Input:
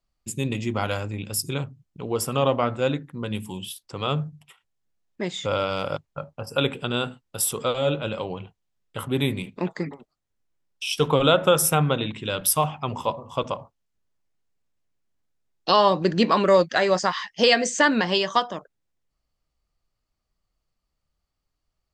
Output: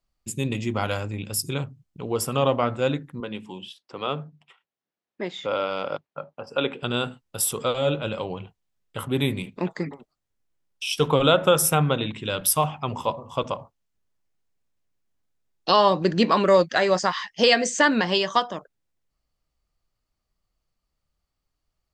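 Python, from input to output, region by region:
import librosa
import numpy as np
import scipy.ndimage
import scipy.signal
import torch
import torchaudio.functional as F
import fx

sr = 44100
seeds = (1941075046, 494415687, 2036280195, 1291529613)

y = fx.chain(x, sr, fx.highpass(hz=240.0, slope=12),
    fx.air_absorb(metres=150.0), at=(3.2, 6.83))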